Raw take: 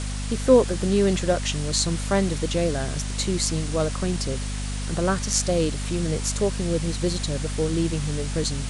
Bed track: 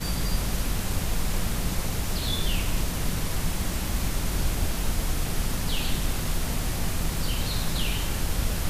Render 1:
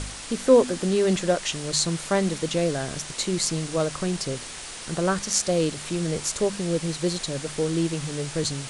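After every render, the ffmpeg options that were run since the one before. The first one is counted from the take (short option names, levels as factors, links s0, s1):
-af "bandreject=f=50:t=h:w=4,bandreject=f=100:t=h:w=4,bandreject=f=150:t=h:w=4,bandreject=f=200:t=h:w=4,bandreject=f=250:t=h:w=4"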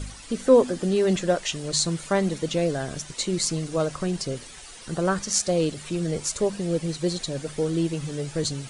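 -af "afftdn=nr=11:nf=-38"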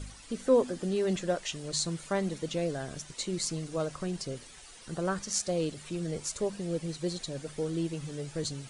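-af "volume=0.422"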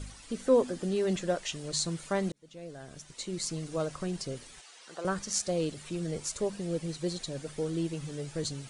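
-filter_complex "[0:a]asettb=1/sr,asplit=3[s0][s1][s2];[s0]atrim=end=4.614[s3];[s1]atrim=start=4.61:end=5.05,asetpts=PTS-STARTPTS,afade=t=in:d=0.004:c=qsin,afade=t=out:st=0.436:d=0.004:c=qsin,highpass=550,lowpass=7200[s4];[s2]atrim=start=5.046[s5];[s3][s4]acrossfade=d=0.004:c1=hsin:c2=qsin[s6];[s6][s5]acrossfade=d=0.004:c1=qsin:c2=hsin,asplit=2[s7][s8];[s7]atrim=end=2.32,asetpts=PTS-STARTPTS,afade=t=out:st=2.316:d=0.004:c=hsin[s9];[s8]atrim=start=2.32,asetpts=PTS-STARTPTS,afade=t=in:d=1.39[s10];[s9][s10]concat=n=2:v=0:a=1"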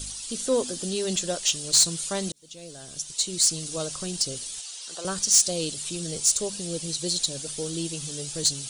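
-af "aexciter=amount=5.9:drive=4.6:freq=2900,asoftclip=type=tanh:threshold=0.282"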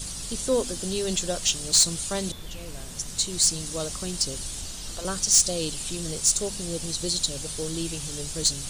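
-filter_complex "[1:a]volume=0.211[s0];[0:a][s0]amix=inputs=2:normalize=0"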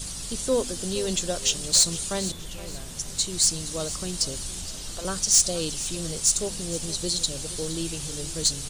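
-af "aecho=1:1:468|936|1404:0.158|0.0602|0.0229"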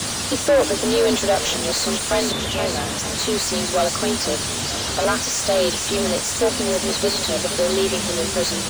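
-filter_complex "[0:a]afreqshift=57,asplit=2[s0][s1];[s1]highpass=f=720:p=1,volume=44.7,asoftclip=type=tanh:threshold=0.447[s2];[s0][s2]amix=inputs=2:normalize=0,lowpass=f=1700:p=1,volume=0.501"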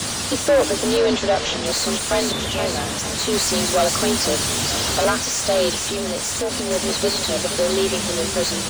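-filter_complex "[0:a]asettb=1/sr,asplit=3[s0][s1][s2];[s0]atrim=end=0.974[s3];[s1]atrim=start=0.97:end=1.66,asetpts=PTS-STARTPTS,afade=t=in:d=0.004:c=qsin,afade=t=out:st=0.686:d=0.004:c=qsin,lowpass=5500[s4];[s2]atrim=start=1.656[s5];[s3][s4]acrossfade=d=0.004:c1=hsin:c2=qsin[s6];[s6][s5]acrossfade=d=0.004:c1=qsin:c2=hsin,asettb=1/sr,asplit=3[s7][s8][s9];[s7]atrim=end=3.334[s10];[s8]atrim=start=3.33:end=5.1,asetpts=PTS-STARTPTS,afade=t=in:d=0.004:c=qsin,afade=t=out:st=1.766:d=0.004:c=qsin,aeval=exprs='val(0)+0.5*0.0531*sgn(val(0))':c=same[s11];[s9]atrim=start=5.096[s12];[s10][s11]acrossfade=d=0.004:c1=hsin:c2=qsin[s13];[s13][s12]acrossfade=d=0.004:c1=qsin:c2=hsin,asettb=1/sr,asplit=3[s14][s15][s16];[s14]atrim=end=5.794[s17];[s15]atrim=start=5.79:end=6.71,asetpts=PTS-STARTPTS,afade=t=in:d=0.004:c=qsin,afade=t=out:st=0.916:d=0.004:c=qsin,acompressor=threshold=0.1:ratio=5:attack=3.2:release=140:knee=1:detection=peak[s18];[s16]atrim=start=6.706[s19];[s17][s18]acrossfade=d=0.004:c1=hsin:c2=qsin[s20];[s20][s19]acrossfade=d=0.004:c1=qsin:c2=hsin"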